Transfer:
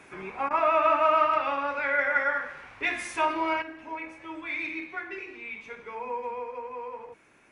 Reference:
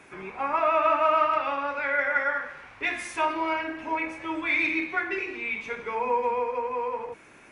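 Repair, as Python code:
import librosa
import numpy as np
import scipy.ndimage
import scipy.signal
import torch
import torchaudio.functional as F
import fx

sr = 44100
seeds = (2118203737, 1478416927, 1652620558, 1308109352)

y = fx.fix_interpolate(x, sr, at_s=(0.49,), length_ms=15.0)
y = fx.gain(y, sr, db=fx.steps((0.0, 0.0), (3.62, 8.0)))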